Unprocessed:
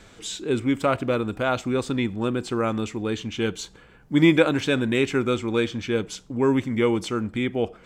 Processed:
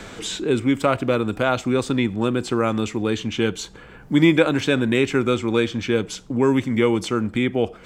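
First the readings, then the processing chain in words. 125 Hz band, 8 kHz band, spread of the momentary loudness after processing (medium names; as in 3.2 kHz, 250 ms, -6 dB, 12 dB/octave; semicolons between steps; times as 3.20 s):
+3.0 dB, +3.0 dB, 6 LU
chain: three bands compressed up and down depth 40%; trim +3 dB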